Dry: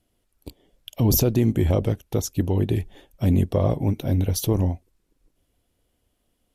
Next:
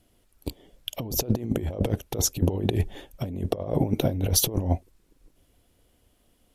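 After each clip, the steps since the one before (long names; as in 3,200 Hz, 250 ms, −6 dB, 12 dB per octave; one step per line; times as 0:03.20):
dynamic equaliser 550 Hz, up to +7 dB, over −37 dBFS, Q 0.88
compressor whose output falls as the input rises −24 dBFS, ratio −0.5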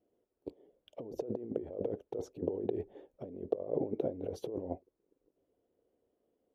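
resonant band-pass 440 Hz, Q 2.5
level −3 dB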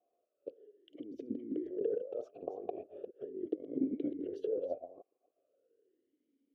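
delay that plays each chunk backwards 239 ms, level −9.5 dB
formant filter swept between two vowels a-i 0.39 Hz
level +9 dB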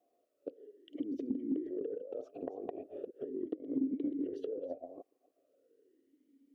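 downward compressor 6 to 1, threshold −41 dBFS, peak gain reduction 13 dB
hollow resonant body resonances 270/1,900 Hz, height 9 dB
level +3.5 dB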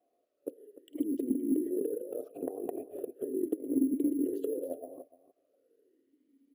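dynamic equaliser 340 Hz, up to +7 dB, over −48 dBFS, Q 1.3
bad sample-rate conversion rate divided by 4×, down filtered, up hold
single-tap delay 297 ms −15.5 dB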